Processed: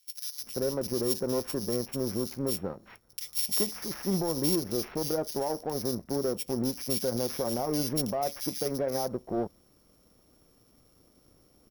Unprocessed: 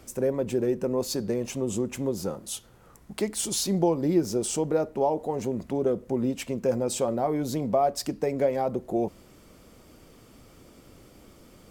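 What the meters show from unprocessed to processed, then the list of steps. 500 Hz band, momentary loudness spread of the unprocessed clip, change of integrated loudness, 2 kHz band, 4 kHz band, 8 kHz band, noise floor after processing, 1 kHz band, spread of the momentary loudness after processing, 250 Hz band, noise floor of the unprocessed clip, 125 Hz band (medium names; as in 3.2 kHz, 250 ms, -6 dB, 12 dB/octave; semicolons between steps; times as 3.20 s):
-5.0 dB, 6 LU, -3.0 dB, -3.5 dB, +2.0 dB, -2.0 dB, -64 dBFS, -6.0 dB, 6 LU, -4.0 dB, -54 dBFS, -3.0 dB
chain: sorted samples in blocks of 8 samples; peak limiter -20 dBFS, peak gain reduction 9 dB; power-law waveshaper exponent 1.4; treble shelf 11 kHz +11.5 dB; bands offset in time highs, lows 390 ms, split 2.3 kHz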